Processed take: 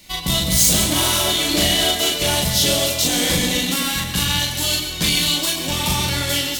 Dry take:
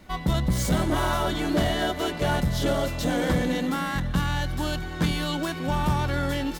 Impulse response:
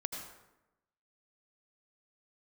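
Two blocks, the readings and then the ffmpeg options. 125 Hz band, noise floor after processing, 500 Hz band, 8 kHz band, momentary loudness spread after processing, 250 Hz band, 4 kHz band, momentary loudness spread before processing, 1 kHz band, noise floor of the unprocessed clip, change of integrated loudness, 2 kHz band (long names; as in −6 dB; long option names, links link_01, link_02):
+1.0 dB, −27 dBFS, +2.5 dB, +20.0 dB, 6 LU, +1.5 dB, +16.5 dB, 3 LU, +1.5 dB, −34 dBFS, +9.0 dB, +7.0 dB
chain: -filter_complex "[0:a]aeval=exprs='0.211*(cos(1*acos(clip(val(0)/0.211,-1,1)))-cos(1*PI/2))+0.0106*(cos(7*acos(clip(val(0)/0.211,-1,1)))-cos(7*PI/2))':channel_layout=same,aexciter=amount=2.8:drive=10:freq=2200,asplit=2[link_01][link_02];[1:a]atrim=start_sample=2205,adelay=38[link_03];[link_02][link_03]afir=irnorm=-1:irlink=0,volume=-1dB[link_04];[link_01][link_04]amix=inputs=2:normalize=0,volume=-1dB"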